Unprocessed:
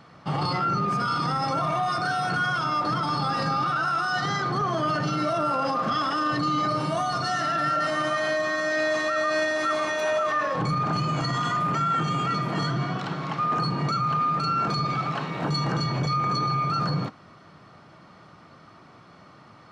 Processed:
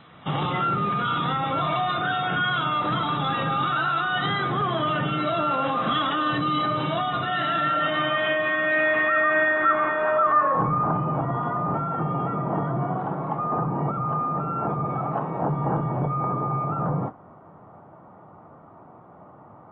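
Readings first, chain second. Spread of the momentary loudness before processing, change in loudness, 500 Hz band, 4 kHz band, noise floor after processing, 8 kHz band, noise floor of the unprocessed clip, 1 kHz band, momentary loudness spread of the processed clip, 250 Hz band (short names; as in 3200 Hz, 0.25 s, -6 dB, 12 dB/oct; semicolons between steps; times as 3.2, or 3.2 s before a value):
3 LU, +1.5 dB, +1.5 dB, +0.5 dB, -48 dBFS, under -35 dB, -51 dBFS, +1.0 dB, 7 LU, +1.0 dB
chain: low-pass sweep 3800 Hz -> 830 Hz, 7.69–11.23; AAC 16 kbps 24000 Hz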